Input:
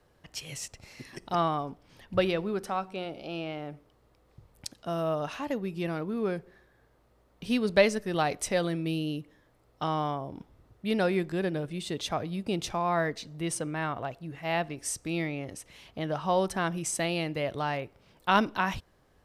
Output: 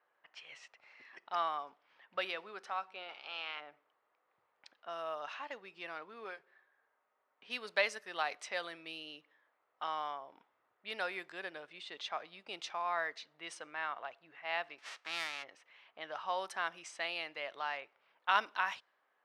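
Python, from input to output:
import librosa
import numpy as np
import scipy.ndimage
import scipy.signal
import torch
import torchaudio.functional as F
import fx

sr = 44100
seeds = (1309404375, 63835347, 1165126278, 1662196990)

y = fx.spec_clip(x, sr, under_db=20, at=(3.08, 3.59), fade=0.02)
y = fx.notch_comb(y, sr, f0_hz=170.0, at=(6.24, 7.48))
y = fx.envelope_flatten(y, sr, power=0.3, at=(14.78, 15.42), fade=0.02)
y = fx.lowpass(y, sr, hz=3000.0, slope=6)
y = fx.env_lowpass(y, sr, base_hz=2000.0, full_db=-23.5)
y = scipy.signal.sosfilt(scipy.signal.butter(2, 1100.0, 'highpass', fs=sr, output='sos'), y)
y = y * 10.0 ** (-1.5 / 20.0)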